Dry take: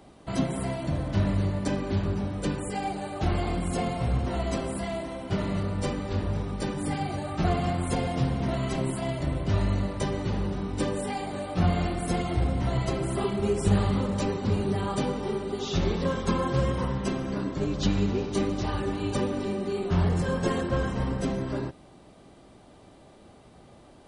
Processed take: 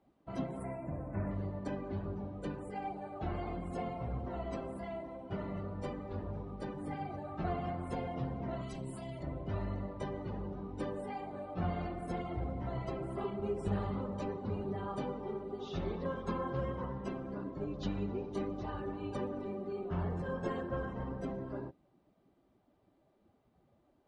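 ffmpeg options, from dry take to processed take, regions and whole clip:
-filter_complex "[0:a]asettb=1/sr,asplit=3[a][b][c];[a]atrim=end=0.604[d];[b]atrim=start=0.6:end=1.31,asetpts=PTS-STARTPTS,afade=t=in:d=0.004:c=qsin,afade=t=out:st=0.706:d=0.004:c=qsin,asuperstop=centerf=4400:order=20:qfactor=0.99,highshelf=f=8.7k:g=11.5[e];[c]atrim=start=1.306[f];[d][e]acrossfade=d=0.004:c1=hsin:c2=qsin[g];[g][f]acrossfade=d=0.004:c1=qsin:c2=hsin,asettb=1/sr,asplit=3[h][i][j];[h]atrim=end=8.614[k];[i]atrim=start=8.61:end=9.23,asetpts=PTS-STARTPTS,afade=t=in:d=0.004:c=qsin,afade=t=out:st=0.616:d=0.004:c=qsin,highshelf=f=3.9k:g=9,acrossover=split=240|3000[l][m][n];[m]acompressor=threshold=-35dB:ratio=4:attack=3.2:release=140:knee=2.83:detection=peak[o];[l][o][n]amix=inputs=3:normalize=0,aeval=exprs='clip(val(0),-1,0.0531)':c=same[p];[j]atrim=start=9.226[q];[k][p]acrossfade=d=0.004:c1=hsin:c2=qsin[r];[r][q]acrossfade=d=0.004:c1=qsin:c2=hsin,afftdn=nr=12:nf=-40,lowpass=f=1.6k:p=1,lowshelf=f=310:g=-7,volume=-6.5dB"

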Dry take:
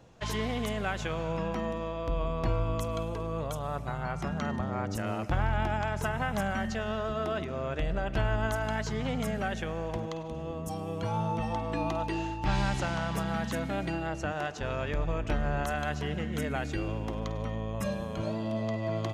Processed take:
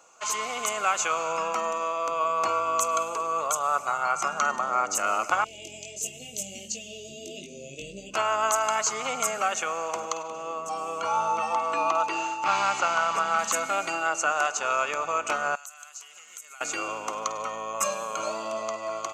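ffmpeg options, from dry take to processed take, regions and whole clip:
-filter_complex "[0:a]asettb=1/sr,asplit=3[a][b][c];[a]atrim=end=5.444[d];[b]atrim=start=5.44:end=8.14,asetpts=PTS-STARTPTS,afade=t=in:d=0.004:c=qsin,afade=t=out:st=2.696:d=0.004:c=qsin,asubboost=boost=7.5:cutoff=240,flanger=delay=19.5:depth=2.2:speed=1.5,asuperstop=centerf=1200:order=8:qfactor=0.53[e];[c]atrim=start=8.136[f];[d][e]acrossfade=d=0.004:c1=hsin:c2=qsin[g];[g][f]acrossfade=d=0.004:c1=qsin:c2=hsin,asettb=1/sr,asplit=3[h][i][j];[h]atrim=end=10.224[k];[i]atrim=start=10.22:end=13.39,asetpts=PTS-STARTPTS,afade=t=in:d=0.004:c=qsin,afade=t=out:st=3.166:d=0.004:c=qsin,acrossover=split=4600[l][m];[m]acompressor=threshold=-59dB:ratio=4:attack=1:release=60[n];[l][n]amix=inputs=2:normalize=0,highshelf=f=11k:g=-11.5[o];[j]atrim=start=13.386[p];[k][o]acrossfade=d=0.004:c1=hsin:c2=qsin[q];[q][p]acrossfade=d=0.004:c1=qsin:c2=hsin,asettb=1/sr,asplit=3[r][s][t];[r]atrim=end=15.554[u];[s]atrim=start=15.55:end=16.61,asetpts=PTS-STARTPTS,afade=t=in:d=0.004:c=qsin,afade=t=out:st=1.056:d=0.004:c=qsin,aderivative,acompressor=threshold=-53dB:ratio=10:attack=3.2:release=140:knee=1:detection=peak[v];[t]atrim=start=16.606[w];[u][v]acrossfade=d=0.004:c1=hsin:c2=qsin[x];[x][w]acrossfade=d=0.004:c1=qsin:c2=hsin,superequalizer=10b=2:11b=0.398:13b=0.501:15b=3.55,dynaudnorm=f=210:g=7:m=5dB,highpass=810,volume=5.5dB"

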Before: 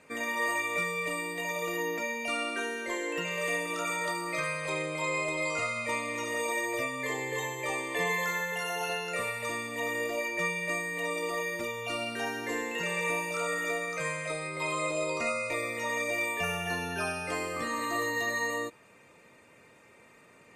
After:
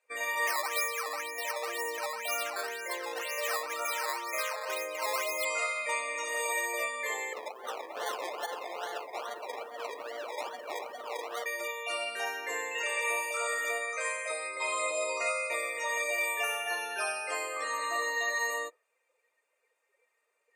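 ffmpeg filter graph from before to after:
-filter_complex "[0:a]asettb=1/sr,asplit=3[a][b][c];[a]atrim=end=0.474[d];[b]atrim=start=0.47:end=5.45,asetpts=PTS-STARTPTS,afade=t=in:d=0.004:c=qsin,afade=t=out:st=4.976:d=0.004:c=qsin,lowpass=2.8k,acrusher=samples=10:mix=1:aa=0.000001:lfo=1:lforange=10:lforate=2[e];[c]atrim=start=5.446[f];[d][e]acrossfade=d=0.004:c1=hsin:c2=qsin[g];[g][f]acrossfade=d=0.004:c1=qsin:c2=hsin,asettb=1/sr,asplit=3[h][i][j];[h]atrim=end=7.334[k];[i]atrim=start=7.33:end=11.46,asetpts=PTS-STARTPTS,afade=t=in:d=0.004:c=qsin,afade=t=out:st=4.126:d=0.004:c=qsin,flanger=delay=18:depth=2:speed=1.9,acrusher=samples=24:mix=1:aa=0.000001:lfo=1:lforange=14.4:lforate=2.4,aecho=1:1:435:0.355,atrim=end_sample=182133[l];[j]atrim=start=11.456[m];[k][l]acrossfade=d=0.004:c1=hsin:c2=qsin[n];[n][m]acrossfade=d=0.004:c1=qsin:c2=hsin,asettb=1/sr,asplit=3[o][p][q];[o]atrim=end=17.774[r];[p]atrim=start=17.77:end=18.39,asetpts=PTS-STARTPTS,afade=t=in:d=0.004:c=qsin,afade=t=out:st=0.616:d=0.004:c=qsin,acrossover=split=8400[s][t];[t]acompressor=threshold=-56dB:ratio=4:attack=1:release=60[u];[s][u]amix=inputs=2:normalize=0,highpass=160[v];[q]atrim=start=18.386[w];[r][v]acrossfade=d=0.004:c1=hsin:c2=qsin[x];[x][w]acrossfade=d=0.004:c1=qsin:c2=hsin,afftdn=nr=21:nf=-44,highpass=f=490:w=0.5412,highpass=f=490:w=1.3066,highshelf=f=8.3k:g=10"

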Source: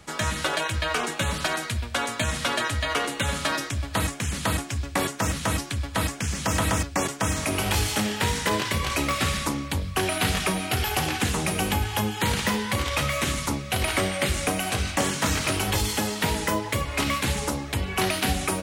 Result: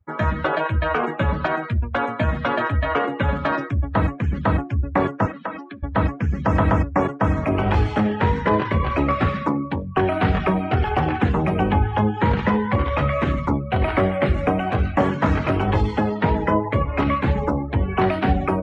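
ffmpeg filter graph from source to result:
-filter_complex "[0:a]asettb=1/sr,asplit=3[a][b][c];[a]atrim=end=5.264[d];[b]atrim=start=5.26:end=5.83,asetpts=PTS-STARTPTS,afade=t=in:d=0.004:c=qsin,afade=t=out:st=0.566:d=0.004:c=qsin,acrossover=split=190 7400:gain=0.112 1 0.224[e][f][g];[e][f][g]amix=inputs=3:normalize=0,acrossover=split=190|930[h][i][j];[h]acompressor=threshold=-52dB:ratio=4[k];[i]acompressor=threshold=-38dB:ratio=4[l];[j]acompressor=threshold=-31dB:ratio=4[m];[k][l][m]amix=inputs=3:normalize=0[n];[c]atrim=start=5.826[o];[d][n]acrossfade=d=0.004:c1=hsin:c2=qsin[p];[p][o]acrossfade=d=0.004:c1=qsin:c2=hsin,asettb=1/sr,asplit=3[q][r][s];[q]atrim=end=9.284[t];[r]atrim=start=9.28:end=9.97,asetpts=PTS-STARTPTS,afade=t=in:d=0.004:c=qsin,afade=t=out:st=0.686:d=0.004:c=qsin,highpass=140,acrusher=bits=3:mode=log:mix=0:aa=0.000001[u];[s]atrim=start=9.966[v];[t][u]acrossfade=d=0.004:c1=hsin:c2=qsin[w];[w][v]acrossfade=d=0.004:c1=qsin:c2=hsin,afftdn=nr=36:nf=-33,lowpass=1.4k,volume=7.5dB"

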